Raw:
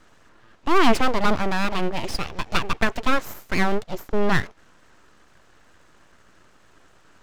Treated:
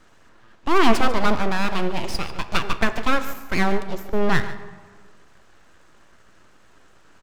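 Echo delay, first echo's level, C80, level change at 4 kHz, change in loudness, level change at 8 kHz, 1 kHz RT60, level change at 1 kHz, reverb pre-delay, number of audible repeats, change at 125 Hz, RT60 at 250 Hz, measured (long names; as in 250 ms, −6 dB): 145 ms, −15.5 dB, 12.0 dB, +0.5 dB, +0.5 dB, +0.5 dB, 1.6 s, +0.5 dB, 3 ms, 1, +0.5 dB, 1.6 s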